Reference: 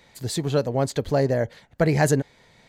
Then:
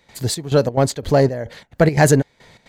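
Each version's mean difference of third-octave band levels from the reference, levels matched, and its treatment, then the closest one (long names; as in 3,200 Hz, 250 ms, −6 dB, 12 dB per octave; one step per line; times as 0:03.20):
3.5 dB: gate pattern ".xxx..xx.xx" 175 BPM −12 dB
in parallel at −8 dB: soft clipping −23.5 dBFS, distortion −7 dB
on the sum: level +5.5 dB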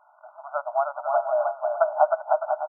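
21.0 dB: linear-phase brick-wall band-pass 590–1,500 Hz
on a send: bouncing-ball delay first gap 310 ms, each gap 0.6×, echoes 5
on the sum: level +5.5 dB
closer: first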